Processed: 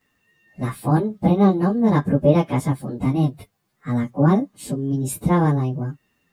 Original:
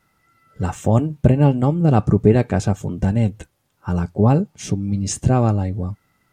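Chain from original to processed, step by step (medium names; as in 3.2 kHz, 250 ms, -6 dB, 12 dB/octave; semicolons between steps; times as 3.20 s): frequency-domain pitch shifter +5.5 st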